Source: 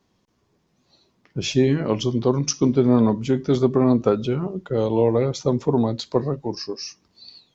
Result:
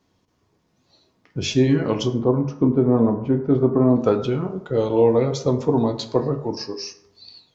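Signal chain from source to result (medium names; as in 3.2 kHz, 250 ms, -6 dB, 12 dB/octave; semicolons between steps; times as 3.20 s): 2.08–3.96 s: low-pass 1.2 kHz 12 dB/octave; reverberation RT60 0.80 s, pre-delay 5 ms, DRR 5.5 dB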